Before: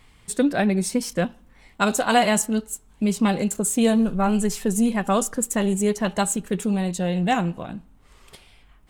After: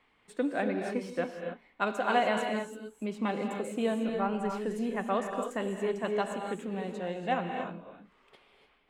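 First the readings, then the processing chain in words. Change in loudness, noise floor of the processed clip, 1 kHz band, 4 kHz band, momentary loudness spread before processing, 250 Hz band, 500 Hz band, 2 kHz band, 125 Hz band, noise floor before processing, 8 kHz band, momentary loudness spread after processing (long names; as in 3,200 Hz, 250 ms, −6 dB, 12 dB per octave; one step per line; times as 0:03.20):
−10.0 dB, −67 dBFS, −7.0 dB, −11.5 dB, 8 LU, −12.5 dB, −6.5 dB, −7.5 dB, −14.5 dB, −54 dBFS, −25.0 dB, 10 LU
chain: three-way crossover with the lows and the highs turned down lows −19 dB, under 230 Hz, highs −20 dB, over 3,300 Hz
reverb whose tail is shaped and stops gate 320 ms rising, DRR 4 dB
level −8 dB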